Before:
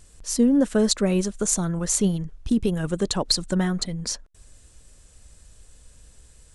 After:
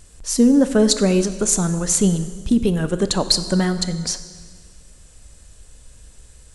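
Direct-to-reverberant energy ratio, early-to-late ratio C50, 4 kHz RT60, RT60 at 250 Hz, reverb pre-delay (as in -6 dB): 10.5 dB, 12.0 dB, 1.6 s, 1.7 s, 7 ms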